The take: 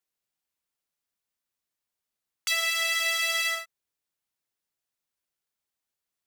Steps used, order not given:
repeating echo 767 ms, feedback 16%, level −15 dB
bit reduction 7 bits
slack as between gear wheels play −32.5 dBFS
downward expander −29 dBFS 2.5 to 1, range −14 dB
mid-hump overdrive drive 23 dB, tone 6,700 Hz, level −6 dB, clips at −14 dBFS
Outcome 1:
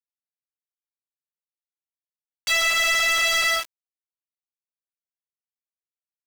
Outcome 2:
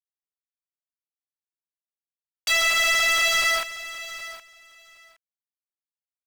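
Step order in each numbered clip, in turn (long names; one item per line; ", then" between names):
slack as between gear wheels, then repeating echo, then downward expander, then bit reduction, then mid-hump overdrive
slack as between gear wheels, then bit reduction, then mid-hump overdrive, then downward expander, then repeating echo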